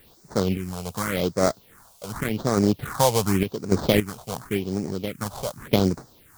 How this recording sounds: aliases and images of a low sample rate 2700 Hz, jitter 20%; random-step tremolo 3.5 Hz, depth 75%; a quantiser's noise floor 10-bit, dither triangular; phasing stages 4, 0.88 Hz, lowest notch 290–3000 Hz

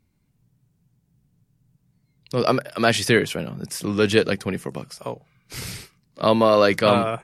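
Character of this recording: noise floor -68 dBFS; spectral tilt -5.0 dB/oct

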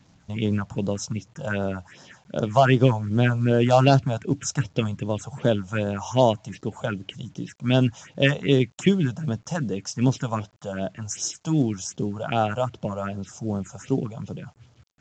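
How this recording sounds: phasing stages 4, 2.6 Hz, lowest notch 300–2300 Hz; a quantiser's noise floor 10-bit, dither none; µ-law

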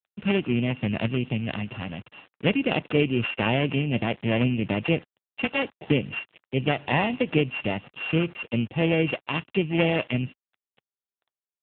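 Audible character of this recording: a buzz of ramps at a fixed pitch in blocks of 16 samples; tremolo triangle 4.1 Hz, depth 35%; a quantiser's noise floor 8-bit, dither none; AMR-NB

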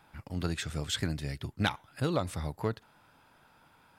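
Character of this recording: noise floor -63 dBFS; spectral tilt -5.0 dB/oct

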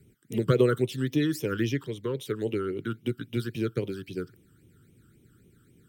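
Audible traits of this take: phasing stages 12, 3.7 Hz, lowest notch 690–1500 Hz

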